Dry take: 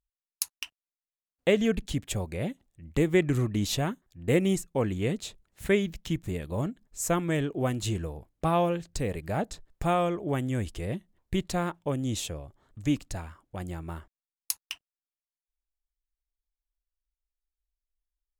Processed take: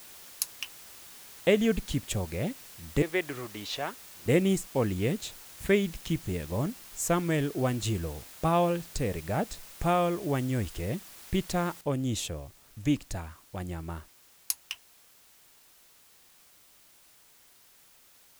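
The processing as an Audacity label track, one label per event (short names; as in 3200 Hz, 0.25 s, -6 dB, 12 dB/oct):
3.020000	4.260000	three-band isolator lows -19 dB, under 430 Hz, highs -20 dB, over 4800 Hz
11.810000	11.810000	noise floor step -49 dB -59 dB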